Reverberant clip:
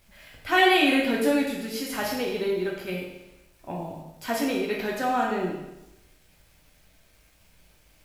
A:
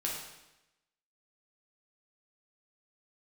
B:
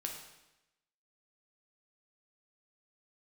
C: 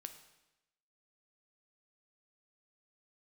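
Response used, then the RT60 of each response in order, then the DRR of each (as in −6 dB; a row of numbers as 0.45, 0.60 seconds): A; 0.95, 0.95, 0.95 seconds; −3.5, 1.0, 7.5 decibels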